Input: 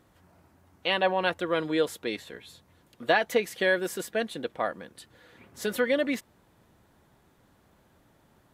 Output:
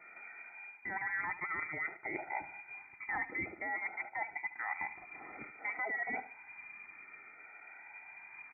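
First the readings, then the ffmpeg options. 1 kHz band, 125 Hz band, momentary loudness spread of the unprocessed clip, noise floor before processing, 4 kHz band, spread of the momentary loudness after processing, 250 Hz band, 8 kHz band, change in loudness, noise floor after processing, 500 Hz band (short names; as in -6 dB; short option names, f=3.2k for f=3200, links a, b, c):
-8.5 dB, -14.5 dB, 13 LU, -64 dBFS, under -40 dB, 14 LU, -18.5 dB, under -35 dB, -11.5 dB, -56 dBFS, -23.0 dB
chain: -filter_complex "[0:a]afftfilt=real='re*pow(10,10/40*sin(2*PI*(1.2*log(max(b,1)*sr/1024/100)/log(2)-(-0.55)*(pts-256)/sr)))':imag='im*pow(10,10/40*sin(2*PI*(1.2*log(max(b,1)*sr/1024/100)/log(2)-(-0.55)*(pts-256)/sr)))':win_size=1024:overlap=0.75,highpass=50,equalizer=f=97:w=2.4:g=7.5,aecho=1:1:1.8:0.71,acontrast=36,alimiter=limit=-15.5dB:level=0:latency=1:release=38,areverse,acompressor=threshold=-33dB:ratio=20,areverse,crystalizer=i=3:c=0,tremolo=f=190:d=0.261,asplit=2[a][b];[b]aecho=0:1:73|146|219:0.188|0.0565|0.017[c];[a][c]amix=inputs=2:normalize=0,lowpass=f=2.1k:t=q:w=0.5098,lowpass=f=2.1k:t=q:w=0.6013,lowpass=f=2.1k:t=q:w=0.9,lowpass=f=2.1k:t=q:w=2.563,afreqshift=-2500,adynamicequalizer=threshold=0.00282:dfrequency=1600:dqfactor=0.7:tfrequency=1600:tqfactor=0.7:attack=5:release=100:ratio=0.375:range=2:mode=cutabove:tftype=highshelf,volume=1dB"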